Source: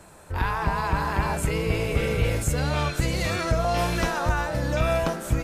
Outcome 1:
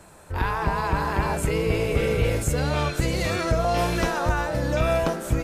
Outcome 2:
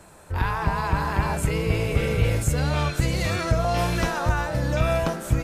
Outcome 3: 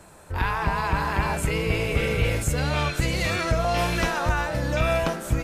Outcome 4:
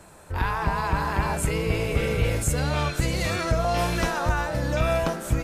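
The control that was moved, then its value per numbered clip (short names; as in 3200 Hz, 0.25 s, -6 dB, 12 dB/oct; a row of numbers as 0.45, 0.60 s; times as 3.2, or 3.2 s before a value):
dynamic EQ, frequency: 410, 110, 2500, 9300 Hz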